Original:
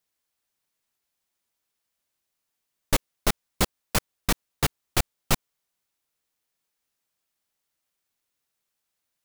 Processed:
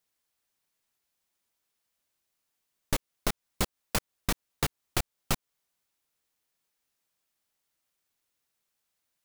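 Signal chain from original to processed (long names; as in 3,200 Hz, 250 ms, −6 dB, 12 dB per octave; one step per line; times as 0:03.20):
downward compressor 3 to 1, threshold −26 dBFS, peak gain reduction 8 dB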